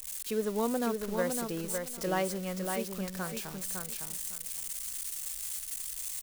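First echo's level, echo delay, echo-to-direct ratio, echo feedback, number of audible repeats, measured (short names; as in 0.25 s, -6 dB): -5.0 dB, 0.557 s, -5.0 dB, 21%, 3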